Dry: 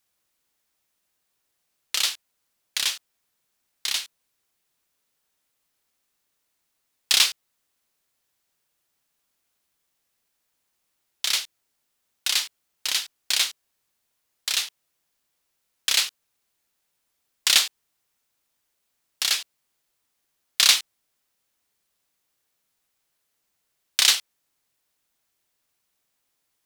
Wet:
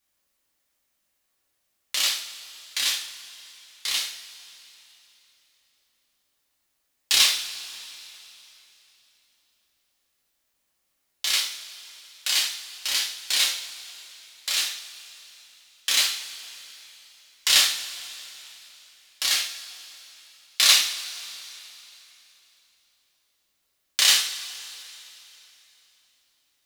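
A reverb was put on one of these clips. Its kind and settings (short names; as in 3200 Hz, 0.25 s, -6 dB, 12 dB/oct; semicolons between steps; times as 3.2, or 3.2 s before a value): two-slope reverb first 0.48 s, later 3.4 s, from -18 dB, DRR -3.5 dB; gain -4 dB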